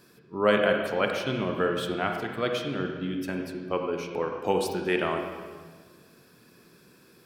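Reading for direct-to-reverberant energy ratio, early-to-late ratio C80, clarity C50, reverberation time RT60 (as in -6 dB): 3.0 dB, 5.5 dB, 4.0 dB, 1.5 s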